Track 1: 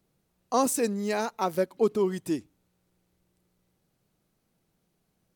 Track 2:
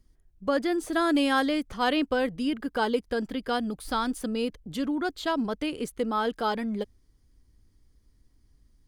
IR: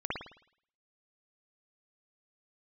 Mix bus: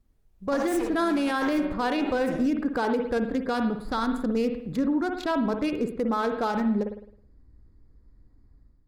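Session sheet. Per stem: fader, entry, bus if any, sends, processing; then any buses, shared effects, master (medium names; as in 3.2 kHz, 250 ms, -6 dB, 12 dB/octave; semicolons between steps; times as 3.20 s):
-7.5 dB, 0.00 s, send -9 dB, comb filter that takes the minimum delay 8.7 ms; compression, threshold -31 dBFS, peak gain reduction 11 dB; auto duck -9 dB, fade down 1.90 s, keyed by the second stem
-5.0 dB, 0.00 s, send -11.5 dB, local Wiener filter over 15 samples; band-stop 3.1 kHz, Q 8.7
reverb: on, pre-delay 53 ms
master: level rider gain up to 9 dB; peak limiter -17.5 dBFS, peak gain reduction 10.5 dB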